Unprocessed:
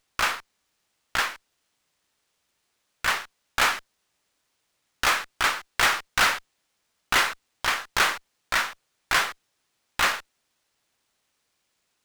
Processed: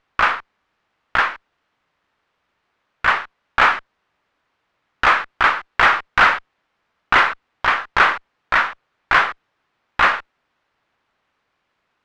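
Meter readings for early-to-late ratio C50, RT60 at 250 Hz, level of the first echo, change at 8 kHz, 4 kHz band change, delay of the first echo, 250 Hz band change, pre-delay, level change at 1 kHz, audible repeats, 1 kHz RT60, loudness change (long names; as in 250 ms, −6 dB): no reverb audible, no reverb audible, no echo audible, below −10 dB, 0.0 dB, no echo audible, +6.5 dB, no reverb audible, +10.0 dB, no echo audible, no reverb audible, +7.0 dB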